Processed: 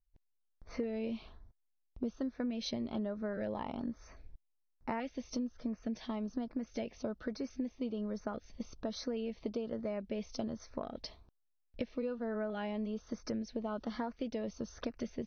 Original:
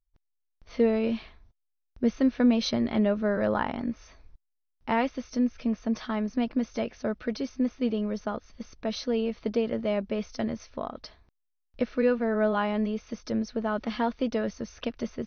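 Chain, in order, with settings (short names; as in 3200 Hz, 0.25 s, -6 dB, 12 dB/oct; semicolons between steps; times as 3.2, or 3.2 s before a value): LFO notch saw up 1.2 Hz 960–3800 Hz; compressor 6:1, threshold -35 dBFS, peak gain reduction 16.5 dB; mismatched tape noise reduction decoder only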